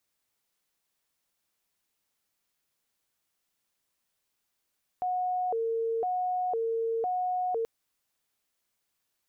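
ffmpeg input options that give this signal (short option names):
-f lavfi -i "aevalsrc='0.0473*sin(2*PI*(592.5*t+137.5/0.99*(0.5-abs(mod(0.99*t,1)-0.5))))':d=2.63:s=44100"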